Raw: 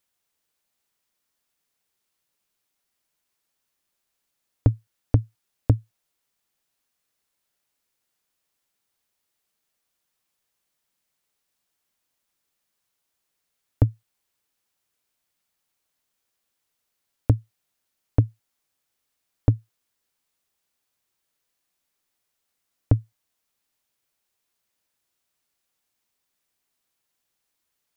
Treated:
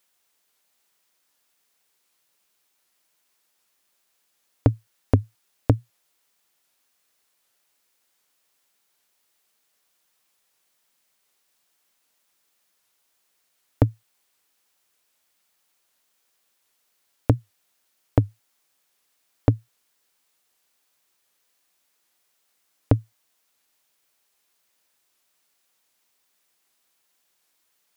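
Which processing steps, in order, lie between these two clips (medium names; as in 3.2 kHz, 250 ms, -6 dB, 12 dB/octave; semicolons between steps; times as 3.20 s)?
bass shelf 180 Hz -12 dB; warped record 78 rpm, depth 160 cents; trim +8 dB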